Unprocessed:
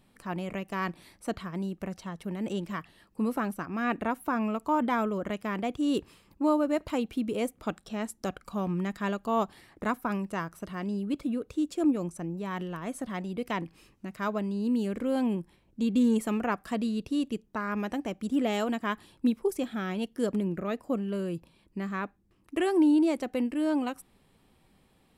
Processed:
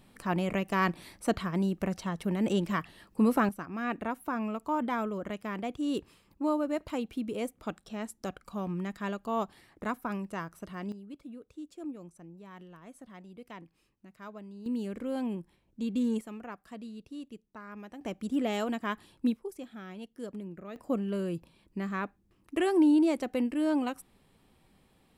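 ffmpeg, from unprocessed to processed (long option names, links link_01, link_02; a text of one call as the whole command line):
ffmpeg -i in.wav -af "asetnsamples=nb_out_samples=441:pad=0,asendcmd='3.49 volume volume -4dB;10.92 volume volume -14.5dB;14.66 volume volume -5.5dB;16.21 volume volume -13.5dB;18.01 volume volume -2.5dB;19.37 volume volume -11.5dB;20.76 volume volume -0.5dB',volume=4.5dB" out.wav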